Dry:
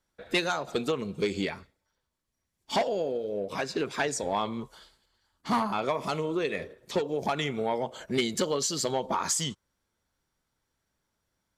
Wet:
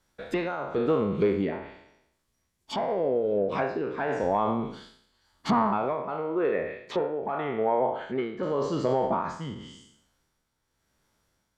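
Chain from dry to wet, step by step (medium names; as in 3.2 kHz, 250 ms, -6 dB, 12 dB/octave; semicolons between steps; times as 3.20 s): spectral sustain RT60 0.69 s; low-pass that closes with the level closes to 1.3 kHz, closed at -26.5 dBFS; 6.02–8.43 s: tone controls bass -9 dB, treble -15 dB; peak limiter -20.5 dBFS, peak gain reduction 6 dB; tremolo 0.9 Hz, depth 57%; trim +6 dB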